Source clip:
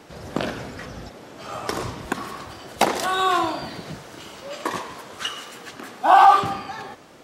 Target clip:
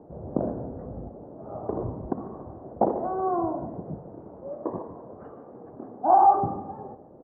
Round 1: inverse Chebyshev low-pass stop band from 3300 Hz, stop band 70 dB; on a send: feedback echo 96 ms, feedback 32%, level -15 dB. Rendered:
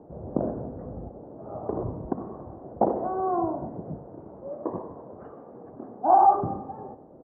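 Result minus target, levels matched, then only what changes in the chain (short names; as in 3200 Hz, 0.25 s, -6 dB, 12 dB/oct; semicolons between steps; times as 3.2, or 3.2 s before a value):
echo 50 ms early
change: feedback echo 0.146 s, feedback 32%, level -15 dB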